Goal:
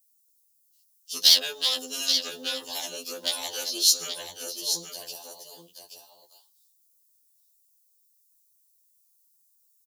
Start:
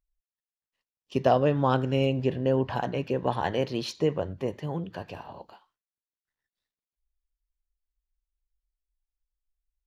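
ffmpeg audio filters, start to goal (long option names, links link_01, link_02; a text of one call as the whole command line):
ffmpeg -i in.wav -filter_complex "[0:a]acrossover=split=400|740[link_01][link_02][link_03];[link_02]aeval=exprs='0.158*sin(PI/2*5.62*val(0)/0.158)':channel_layout=same[link_04];[link_01][link_04][link_03]amix=inputs=3:normalize=0,lowshelf=frequency=440:gain=12,asplit=2[link_05][link_06];[link_06]aecho=0:1:829:0.398[link_07];[link_05][link_07]amix=inputs=2:normalize=0,aexciter=amount=12.7:drive=8.5:freq=3400,aderivative,bandreject=frequency=1400:width=9.4,afftfilt=real='re*2*eq(mod(b,4),0)':imag='im*2*eq(mod(b,4),0)':win_size=2048:overlap=0.75,volume=-1dB" out.wav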